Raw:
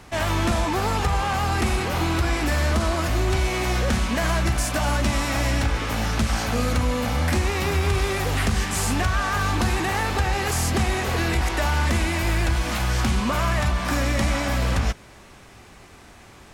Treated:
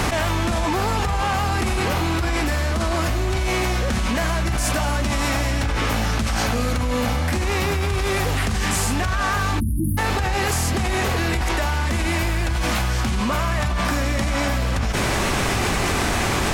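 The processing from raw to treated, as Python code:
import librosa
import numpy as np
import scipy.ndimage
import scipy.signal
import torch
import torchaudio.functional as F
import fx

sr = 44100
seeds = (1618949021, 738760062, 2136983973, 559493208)

y = fx.spec_erase(x, sr, start_s=9.6, length_s=0.38, low_hz=340.0, high_hz=9200.0)
y = fx.env_flatten(y, sr, amount_pct=100)
y = y * librosa.db_to_amplitude(-3.0)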